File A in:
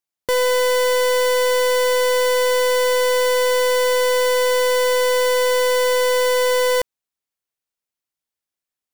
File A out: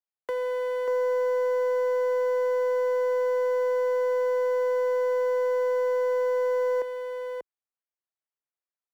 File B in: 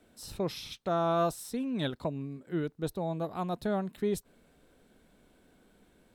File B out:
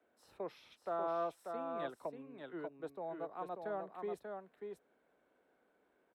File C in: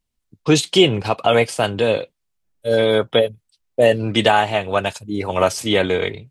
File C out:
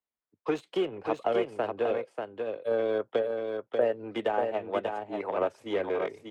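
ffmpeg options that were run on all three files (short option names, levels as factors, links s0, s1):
-filter_complex "[0:a]highpass=51,aeval=exprs='0.891*(cos(1*acos(clip(val(0)/0.891,-1,1)))-cos(1*PI/2))+0.0708*(cos(7*acos(clip(val(0)/0.891,-1,1)))-cos(7*PI/2))':c=same,acrossover=split=190|490[s0][s1][s2];[s0]acompressor=threshold=0.0251:ratio=4[s3];[s1]acompressor=threshold=0.0631:ratio=4[s4];[s2]acompressor=threshold=0.02:ratio=4[s5];[s3][s4][s5]amix=inputs=3:normalize=0,acrossover=split=350 2200:gain=0.1 1 0.126[s6][s7][s8];[s6][s7][s8]amix=inputs=3:normalize=0,asplit=2[s9][s10];[s10]aecho=0:1:589:0.562[s11];[s9][s11]amix=inputs=2:normalize=0"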